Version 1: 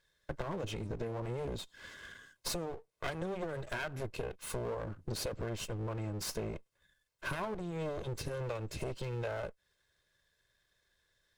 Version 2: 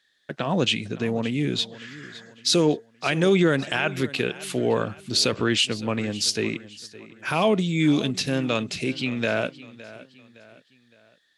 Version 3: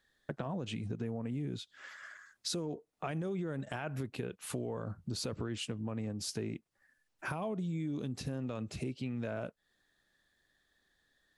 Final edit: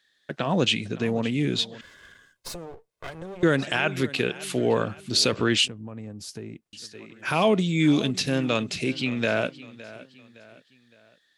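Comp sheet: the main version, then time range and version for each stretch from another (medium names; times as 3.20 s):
2
1.81–3.43 s: from 1
5.68–6.73 s: from 3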